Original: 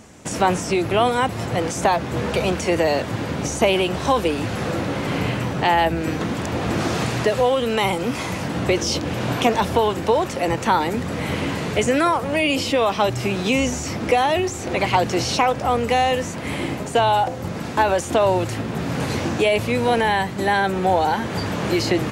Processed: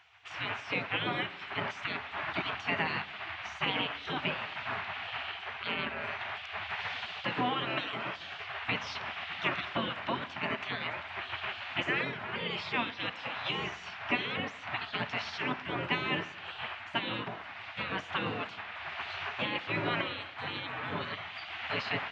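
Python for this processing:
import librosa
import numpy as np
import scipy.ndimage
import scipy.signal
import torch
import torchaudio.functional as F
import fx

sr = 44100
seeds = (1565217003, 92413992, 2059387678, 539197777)

y = fx.cabinet(x, sr, low_hz=150.0, low_slope=24, high_hz=3000.0, hz=(210.0, 310.0, 500.0, 720.0), db=(-4, 4, 9, -10))
y = fx.spec_gate(y, sr, threshold_db=-20, keep='weak')
y = fx.rev_schroeder(y, sr, rt60_s=1.3, comb_ms=31, drr_db=15.5)
y = y * librosa.db_to_amplitude(-1.5)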